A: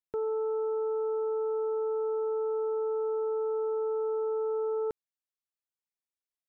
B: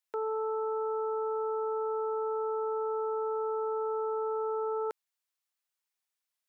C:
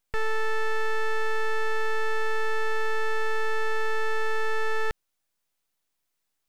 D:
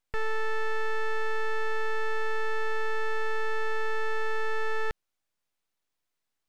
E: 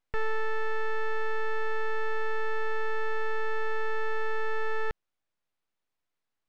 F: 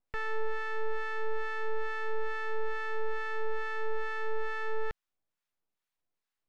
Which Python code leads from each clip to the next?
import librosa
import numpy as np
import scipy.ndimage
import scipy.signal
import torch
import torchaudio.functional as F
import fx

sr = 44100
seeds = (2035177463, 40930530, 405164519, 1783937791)

y1 = scipy.signal.sosfilt(scipy.signal.butter(2, 750.0, 'highpass', fs=sr, output='sos'), x)
y1 = y1 * 10.0 ** (7.0 / 20.0)
y2 = np.abs(y1)
y2 = y2 * 10.0 ** (9.0 / 20.0)
y3 = fx.high_shelf(y2, sr, hz=7000.0, db=-7.5)
y3 = y3 * 10.0 ** (-2.5 / 20.0)
y4 = fx.lowpass(y3, sr, hz=2900.0, slope=6)
y4 = fx.rider(y4, sr, range_db=10, speed_s=0.5)
y5 = fx.harmonic_tremolo(y4, sr, hz=2.3, depth_pct=70, crossover_hz=940.0)